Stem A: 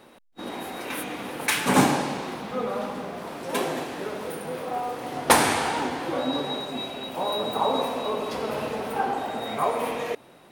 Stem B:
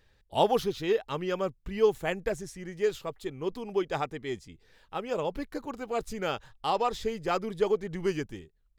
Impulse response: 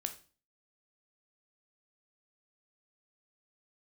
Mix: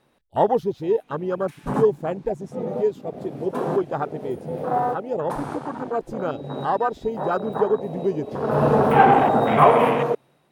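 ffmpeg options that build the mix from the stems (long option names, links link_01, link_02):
-filter_complex "[0:a]equalizer=frequency=140:width_type=o:width=0.35:gain=11,dynaudnorm=framelen=390:gausssize=5:maxgain=14.5dB,volume=-3.5dB[link_01];[1:a]highpass=frequency=46:poles=1,volume=-1dB,asplit=2[link_02][link_03];[link_03]apad=whole_len=463621[link_04];[link_01][link_04]sidechaincompress=threshold=-44dB:ratio=16:attack=22:release=428[link_05];[link_05][link_02]amix=inputs=2:normalize=0,acontrast=74,afwtdn=0.0631"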